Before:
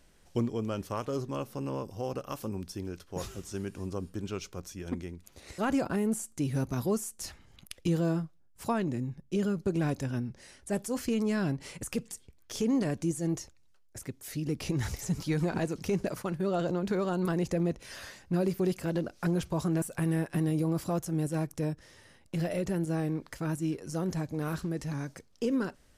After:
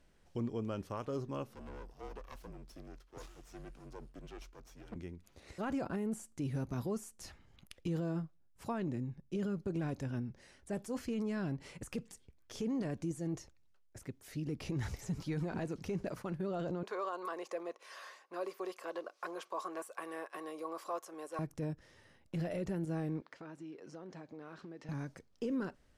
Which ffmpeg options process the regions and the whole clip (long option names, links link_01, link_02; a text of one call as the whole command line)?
ffmpeg -i in.wav -filter_complex "[0:a]asettb=1/sr,asplit=3[link_01][link_02][link_03];[link_01]atrim=end=1.554[link_04];[link_02]atrim=start=1.55:end=4.96,asetpts=PTS-STARTPTS,afade=type=in:duration=0.004:curve=qsin,afade=type=out:start_time=3.406:duration=0.004:curve=qsin,highpass=frequency=270:poles=1,aeval=exprs='max(val(0),0)':channel_layout=same,afreqshift=-43[link_05];[link_03]atrim=start=4.956[link_06];[link_04][link_05]acrossfade=duration=0.004:curve1=hsin:curve2=qsin[link_07];[link_07][link_06]acrossfade=duration=0.004:curve1=qsin:curve2=hsin,asettb=1/sr,asplit=3[link_08][link_09][link_10];[link_08]atrim=end=16.834[link_11];[link_09]atrim=start=16.83:end=21.39,asetpts=PTS-STARTPTS,afade=type=in:duration=0.004:curve=qsin,afade=type=out:start_time=4.556:duration=0.004:curve=qsin,highpass=frequency=440:width=0.5412,highpass=frequency=440:width=1.3066,equalizer=frequency=1100:width=7.9:gain=15[link_12];[link_10]atrim=start=21.386[link_13];[link_11][link_12]acrossfade=duration=0.004:curve1=hsin:curve2=qsin[link_14];[link_14][link_13]acrossfade=duration=0.004:curve1=qsin:curve2=hsin,asettb=1/sr,asplit=3[link_15][link_16][link_17];[link_15]atrim=end=23.214[link_18];[link_16]atrim=start=23.21:end=24.89,asetpts=PTS-STARTPTS,afade=type=in:duration=0.004:curve=qsin,afade=type=out:start_time=1.676:duration=0.004:curve=qsin,highpass=290,lowpass=4800,acompressor=threshold=-40dB:ratio=4:attack=3.2:release=140:knee=1:detection=peak[link_19];[link_17]atrim=start=24.886[link_20];[link_18][link_19]acrossfade=duration=0.004:curve1=hsin:curve2=qsin[link_21];[link_21][link_20]acrossfade=duration=0.004:curve1=qsin:curve2=hsin,aemphasis=mode=reproduction:type=cd,alimiter=limit=-23.5dB:level=0:latency=1:release=11,volume=-5.5dB" out.wav